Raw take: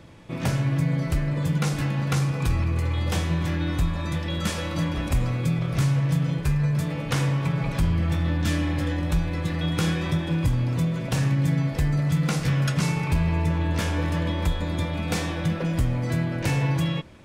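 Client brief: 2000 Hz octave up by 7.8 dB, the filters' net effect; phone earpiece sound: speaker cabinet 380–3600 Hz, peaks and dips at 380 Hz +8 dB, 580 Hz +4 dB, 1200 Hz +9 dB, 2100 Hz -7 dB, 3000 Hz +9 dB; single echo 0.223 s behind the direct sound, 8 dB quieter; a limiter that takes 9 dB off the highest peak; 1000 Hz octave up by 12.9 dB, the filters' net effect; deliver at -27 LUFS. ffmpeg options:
-af "equalizer=f=1k:t=o:g=8,equalizer=f=2k:t=o:g=8,alimiter=limit=-17dB:level=0:latency=1,highpass=380,equalizer=f=380:t=q:w=4:g=8,equalizer=f=580:t=q:w=4:g=4,equalizer=f=1.2k:t=q:w=4:g=9,equalizer=f=2.1k:t=q:w=4:g=-7,equalizer=f=3k:t=q:w=4:g=9,lowpass=f=3.6k:w=0.5412,lowpass=f=3.6k:w=1.3066,aecho=1:1:223:0.398"

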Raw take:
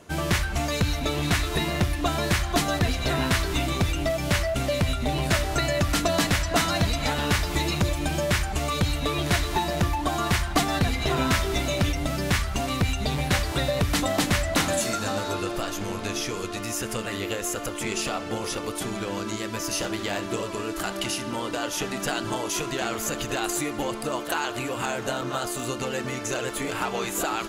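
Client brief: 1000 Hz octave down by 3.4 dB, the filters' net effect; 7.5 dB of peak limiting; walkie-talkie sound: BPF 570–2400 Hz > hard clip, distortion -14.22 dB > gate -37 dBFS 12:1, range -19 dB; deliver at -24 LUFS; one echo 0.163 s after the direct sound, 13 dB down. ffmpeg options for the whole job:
-af "equalizer=f=1k:t=o:g=-3.5,alimiter=limit=-19.5dB:level=0:latency=1,highpass=570,lowpass=2.4k,aecho=1:1:163:0.224,asoftclip=type=hard:threshold=-30dB,agate=range=-19dB:threshold=-37dB:ratio=12,volume=11.5dB"

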